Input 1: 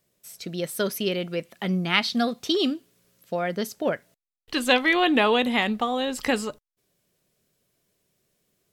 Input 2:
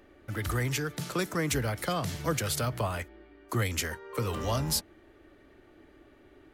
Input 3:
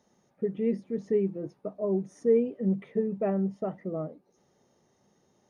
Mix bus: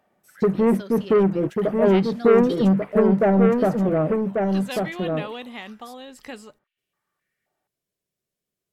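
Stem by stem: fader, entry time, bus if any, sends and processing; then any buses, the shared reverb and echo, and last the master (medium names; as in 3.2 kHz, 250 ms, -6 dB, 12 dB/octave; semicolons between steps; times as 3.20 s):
-13.5 dB, 0.00 s, no send, no echo send, none
-10.5 dB, 0.00 s, no send, echo send -11.5 dB, step-sequenced high-pass 3.8 Hz 720–2800 Hz; auto duck -13 dB, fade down 0.55 s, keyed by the third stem
+2.5 dB, 0.00 s, no send, echo send -4.5 dB, waveshaping leveller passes 3; low-pass 2.4 kHz 24 dB/octave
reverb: none
echo: delay 1142 ms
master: none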